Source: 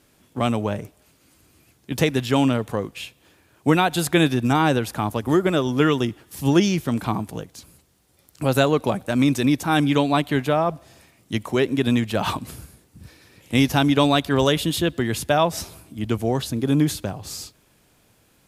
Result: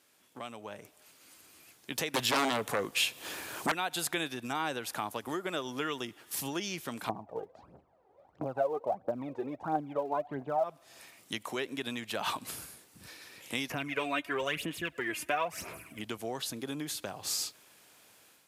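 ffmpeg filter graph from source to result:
-filter_complex "[0:a]asettb=1/sr,asplit=3[a][b][c];[a]atrim=end=2.144[d];[b]atrim=start=2.14:end=3.72,asetpts=PTS-STARTPTS,afade=t=in:d=0.004:c=qsin,afade=t=out:st=1.576:d=0.004:c=qsin,equalizer=f=2.4k:t=o:w=1.9:g=-2.5,aeval=exprs='0.631*sin(PI/2*5.01*val(0)/0.631)':c=same[e];[c]atrim=start=3.716[f];[d][e]acrossfade=d=0.004:c1=hsin:c2=qsin[g];[g][f]acrossfade=d=0.004:c1=qsin:c2=hsin,asettb=1/sr,asplit=3[h][i][j];[h]atrim=end=7.094[k];[i]atrim=start=7.09:end=10.64,asetpts=PTS-STARTPTS,afade=t=in:d=0.004:c=qsin,afade=t=out:st=3.546:d=0.004:c=qsin,lowpass=f=720:t=q:w=2.2,aphaser=in_gain=1:out_gain=1:delay=2.6:decay=0.7:speed=1.5:type=triangular[l];[j]atrim=start=10.636[m];[k][l]acrossfade=d=0.004:c1=hsin:c2=qsin[n];[n][m]acrossfade=d=0.004:c1=qsin:c2=hsin,asettb=1/sr,asplit=3[o][p][q];[o]atrim=end=13.704[r];[p]atrim=start=13.7:end=16,asetpts=PTS-STARTPTS,afade=t=in:d=0.004:c=qsin,afade=t=out:st=2.296:d=0.004:c=qsin,highshelf=f=3k:t=q:w=3:g=-7,bandreject=f=840:w=6.9,aphaser=in_gain=1:out_gain=1:delay=3.3:decay=0.63:speed=1:type=sinusoidal[s];[q]atrim=start=15.996[t];[r][s]acrossfade=d=0.004:c1=hsin:c2=qsin[u];[u][t]acrossfade=d=0.004:c1=qsin:c2=hsin,acompressor=threshold=-32dB:ratio=3,highpass=f=860:p=1,dynaudnorm=f=630:g=3:m=8dB,volume=-5dB"

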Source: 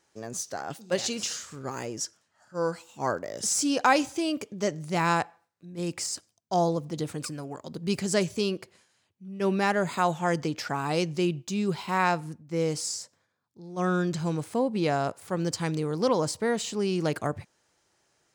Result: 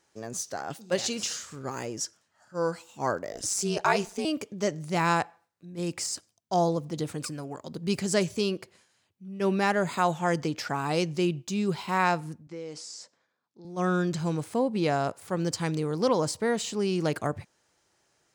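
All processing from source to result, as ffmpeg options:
-filter_complex "[0:a]asettb=1/sr,asplit=3[a][b][c];[a]atrim=end=3.324[d];[b]atrim=start=3.32:end=4.25,asetpts=PTS-STARTPTS,afade=t=in:d=0.004:c=qsin,afade=t=out:st=0.926:d=0.004:c=qsin,bandreject=f=3.2k:w=23,aeval=exprs='val(0)*sin(2*PI*99*n/s)':c=same[e];[c]atrim=start=4.246[f];[d][e]acrossfade=d=0.004:c1=hsin:c2=qsin[g];[g][f]acrossfade=d=0.004:c1=qsin:c2=hsin,asettb=1/sr,asplit=3[h][i][j];[h]atrim=end=12.474[k];[i]atrim=start=12.47:end=13.65,asetpts=PTS-STARTPTS,afade=t=in:d=0.004:c=qsin,afade=t=out:st=1.176:d=0.004:c=qsin,acompressor=threshold=-35dB:ratio=4:attack=3.2:release=140:knee=1:detection=peak,highpass=220,lowpass=6k[l];[j]atrim=start=13.646[m];[k][l]acrossfade=d=0.004:c1=hsin:c2=qsin[n];[n][m]acrossfade=d=0.004:c1=qsin:c2=hsin"

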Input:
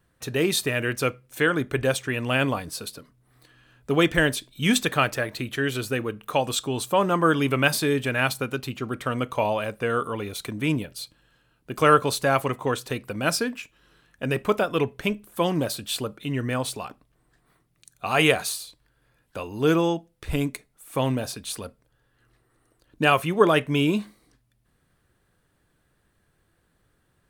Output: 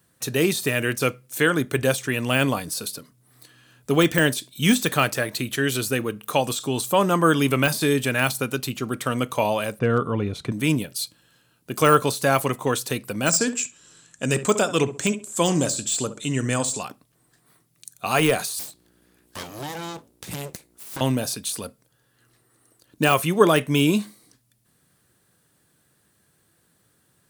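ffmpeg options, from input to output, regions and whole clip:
-filter_complex "[0:a]asettb=1/sr,asplit=3[a][b][c];[a]atrim=end=9.794[d];[b]atrim=start=9.79:end=10.52,asetpts=PTS-STARTPTS,afade=t=in:d=0.004:c=qsin,afade=t=out:st=0.726:d=0.004:c=qsin,lowpass=f=2.6k:p=1,aemphasis=mode=reproduction:type=bsi,asoftclip=type=hard:threshold=-13.5dB[e];[c]atrim=start=10.516[f];[d][e]acrossfade=d=0.004:c1=hsin:c2=qsin[g];[g][f]acrossfade=d=0.004:c1=qsin:c2=hsin,asettb=1/sr,asplit=3[h][i][j];[h]atrim=end=13.264[k];[i]atrim=start=13.26:end=16.83,asetpts=PTS-STARTPTS,afade=t=in:d=0.004:c=qsin,afade=t=out:st=3.566:d=0.004:c=qsin,lowpass=f=7.4k:t=q:w=10,asplit=2[l][m];[m]adelay=66,lowpass=f=1.6k:p=1,volume=-12.5dB,asplit=2[n][o];[o]adelay=66,lowpass=f=1.6k:p=1,volume=0.31,asplit=2[p][q];[q]adelay=66,lowpass=f=1.6k:p=1,volume=0.31[r];[l][n][p][r]amix=inputs=4:normalize=0,atrim=end_sample=157437[s];[j]atrim=start=16.826[t];[k][s]acrossfade=d=0.004:c1=hsin:c2=qsin[u];[u][t]acrossfade=d=0.004:c1=qsin:c2=hsin,asettb=1/sr,asplit=3[v][w][x];[v]atrim=end=18.594[y];[w]atrim=start=18.59:end=21.01,asetpts=PTS-STARTPTS,afade=t=in:d=0.004:c=qsin,afade=t=out:st=2.416:d=0.004:c=qsin,acompressor=threshold=-26dB:ratio=12:attack=3.2:release=140:knee=1:detection=peak,aeval=exprs='val(0)+0.00178*(sin(2*PI*60*n/s)+sin(2*PI*2*60*n/s)/2+sin(2*PI*3*60*n/s)/3+sin(2*PI*4*60*n/s)/4+sin(2*PI*5*60*n/s)/5)':c=same,aeval=exprs='abs(val(0))':c=same[z];[x]atrim=start=21.006[aa];[y][z]acrossfade=d=0.004:c1=hsin:c2=qsin[ab];[ab][aa]acrossfade=d=0.004:c1=qsin:c2=hsin,highpass=130,deesser=0.65,bass=f=250:g=4,treble=f=4k:g=11,volume=1.5dB"

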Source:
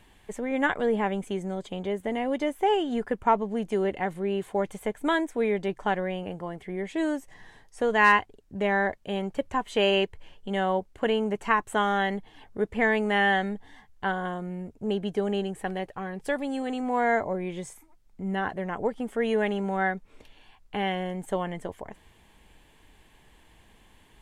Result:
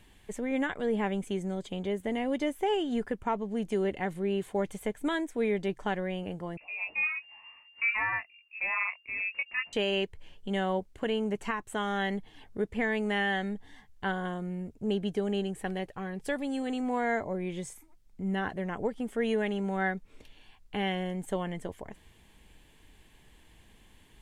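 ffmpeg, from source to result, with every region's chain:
-filter_complex "[0:a]asettb=1/sr,asplit=3[a][b][c];[a]atrim=end=6.574[d];[b]atrim=start=6.57:end=9.73,asetpts=PTS-STARTPTS,afade=t=in:d=0.004:c=qsin,afade=t=out:st=3.156:d=0.004:c=qsin,flanger=delay=18.5:depth=3.4:speed=1,lowpass=f=2.4k:t=q:w=0.5098,lowpass=f=2.4k:t=q:w=0.6013,lowpass=f=2.4k:t=q:w=0.9,lowpass=f=2.4k:t=q:w=2.563,afreqshift=-2800[e];[c]atrim=start=9.726[f];[d][e]acrossfade=d=0.004:c1=hsin:c2=qsin[g];[g][f]acrossfade=d=0.004:c1=qsin:c2=hsin,equalizer=f=890:t=o:w=2:g=-5.5,alimiter=limit=-19.5dB:level=0:latency=1:release=414"

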